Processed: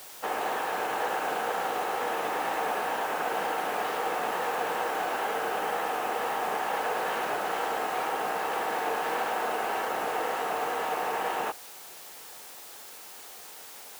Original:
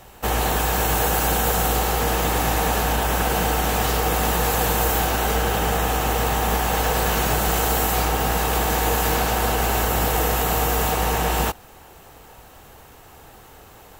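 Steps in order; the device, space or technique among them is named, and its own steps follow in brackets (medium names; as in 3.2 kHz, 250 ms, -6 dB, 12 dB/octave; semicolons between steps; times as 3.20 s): wax cylinder (band-pass 330–2200 Hz; wow and flutter; white noise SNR 16 dB); bass shelf 220 Hz -10.5 dB; trim -4.5 dB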